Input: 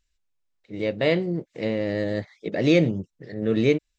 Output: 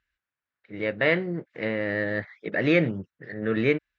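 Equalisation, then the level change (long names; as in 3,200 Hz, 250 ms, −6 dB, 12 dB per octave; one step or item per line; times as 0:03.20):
high-pass filter 55 Hz
low-pass filter 3,300 Hz 12 dB per octave
parametric band 1,600 Hz +14.5 dB 1.1 octaves
−4.0 dB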